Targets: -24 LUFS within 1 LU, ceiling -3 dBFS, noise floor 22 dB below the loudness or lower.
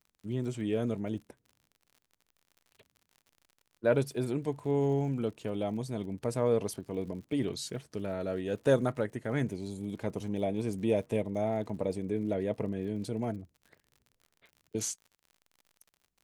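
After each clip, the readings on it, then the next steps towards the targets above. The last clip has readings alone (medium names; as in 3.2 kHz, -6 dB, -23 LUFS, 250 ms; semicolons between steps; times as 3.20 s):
tick rate 57 per s; loudness -33.0 LUFS; peak level -14.0 dBFS; loudness target -24.0 LUFS
-> de-click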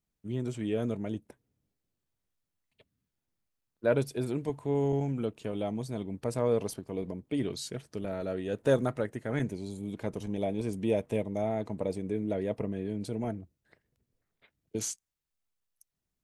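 tick rate 0.12 per s; loudness -33.0 LUFS; peak level -14.0 dBFS; loudness target -24.0 LUFS
-> trim +9 dB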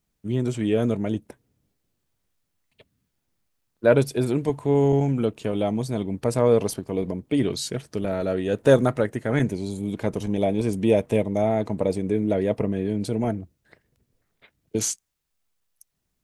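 loudness -24.0 LUFS; peak level -5.0 dBFS; noise floor -77 dBFS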